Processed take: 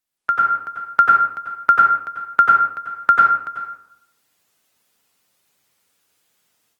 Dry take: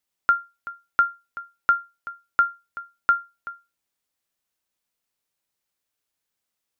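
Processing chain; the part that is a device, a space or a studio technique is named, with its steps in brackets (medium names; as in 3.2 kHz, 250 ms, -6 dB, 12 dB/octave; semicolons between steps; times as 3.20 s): far-field microphone of a smart speaker (reverberation RT60 0.70 s, pre-delay 86 ms, DRR -2.5 dB; high-pass 82 Hz 24 dB/octave; level rider gain up to 13.5 dB; trim -1 dB; Opus 24 kbps 48 kHz)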